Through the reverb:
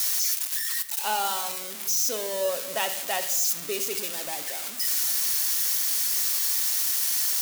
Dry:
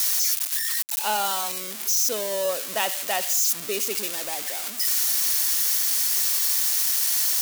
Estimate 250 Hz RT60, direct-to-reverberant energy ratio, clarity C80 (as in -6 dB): 1.8 s, 8.0 dB, 15.0 dB